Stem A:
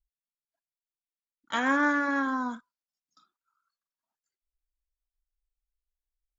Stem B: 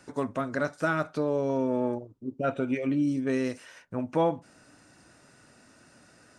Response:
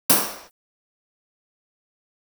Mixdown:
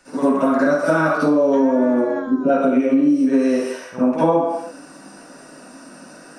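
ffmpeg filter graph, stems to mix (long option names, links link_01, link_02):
-filter_complex "[0:a]bass=frequency=250:gain=15,treble=frequency=4000:gain=-3,volume=-5dB,asplit=2[link_01][link_02];[1:a]highpass=frequency=390:poles=1,volume=1.5dB,asplit=2[link_03][link_04];[link_04]volume=-7dB[link_05];[link_02]apad=whole_len=281622[link_06];[link_03][link_06]sidechaincompress=threshold=-45dB:ratio=8:attack=16:release=174[link_07];[2:a]atrim=start_sample=2205[link_08];[link_05][link_08]afir=irnorm=-1:irlink=0[link_09];[link_01][link_07][link_09]amix=inputs=3:normalize=0,acompressor=threshold=-13dB:ratio=6"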